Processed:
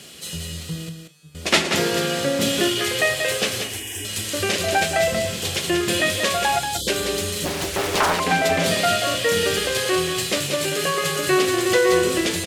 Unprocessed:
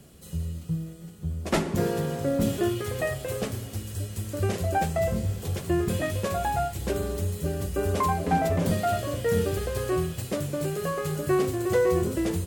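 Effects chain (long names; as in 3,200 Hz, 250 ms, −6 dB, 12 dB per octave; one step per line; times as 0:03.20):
meter weighting curve D
0:06.59–0:06.88: time-frequency box erased 630–3,000 Hz
low-shelf EQ 320 Hz −6.5 dB
in parallel at −0.5 dB: downward compressor, threshold −34 dBFS, peak gain reduction 15.5 dB
0:00.89–0:01.35: on the sum: tuned comb filter 150 Hz, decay 0.7 s, harmonics all, mix 100%
0:03.61–0:04.05: phaser with its sweep stopped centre 870 Hz, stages 8
double-tracking delay 35 ms −13.5 dB
on a send: single-tap delay 184 ms −6.5 dB
on the sum: downsampling to 32,000 Hz
0:07.45–0:08.20: highs frequency-modulated by the lows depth 0.88 ms
level +4 dB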